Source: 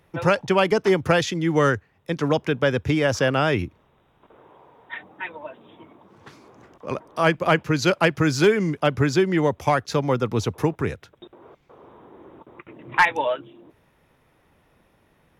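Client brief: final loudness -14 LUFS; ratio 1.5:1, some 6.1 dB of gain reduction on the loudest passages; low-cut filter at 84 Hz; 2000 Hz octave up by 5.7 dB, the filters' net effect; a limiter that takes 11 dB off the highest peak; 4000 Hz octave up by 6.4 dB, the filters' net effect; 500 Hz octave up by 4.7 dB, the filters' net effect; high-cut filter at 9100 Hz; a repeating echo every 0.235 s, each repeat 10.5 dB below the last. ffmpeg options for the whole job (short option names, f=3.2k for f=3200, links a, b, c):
-af "highpass=84,lowpass=9.1k,equalizer=f=500:t=o:g=5.5,equalizer=f=2k:t=o:g=5.5,equalizer=f=4k:t=o:g=6.5,acompressor=threshold=-26dB:ratio=1.5,alimiter=limit=-17dB:level=0:latency=1,aecho=1:1:235|470|705:0.299|0.0896|0.0269,volume=13.5dB"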